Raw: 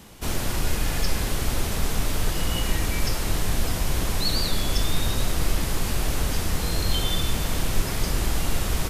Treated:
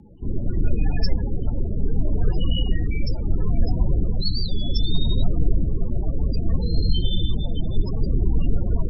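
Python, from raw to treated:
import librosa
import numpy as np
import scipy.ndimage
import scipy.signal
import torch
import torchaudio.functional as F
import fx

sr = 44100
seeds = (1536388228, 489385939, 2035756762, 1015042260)

y = fx.echo_alternate(x, sr, ms=306, hz=920.0, feedback_pct=57, wet_db=-10.5)
y = fx.spec_topn(y, sr, count=16)
y = fx.rotary(y, sr, hz=0.75)
y = y * 10.0 ** (5.0 / 20.0)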